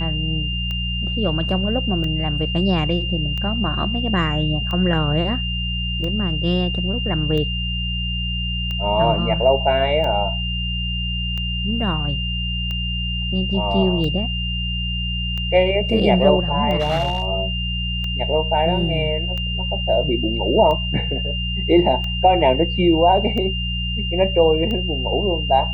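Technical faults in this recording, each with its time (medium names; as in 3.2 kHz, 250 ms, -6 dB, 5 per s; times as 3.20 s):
hum 60 Hz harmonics 3 -25 dBFS
tick 45 rpm -16 dBFS
whine 2.8 kHz -25 dBFS
16.79–17.25 s: clipped -15.5 dBFS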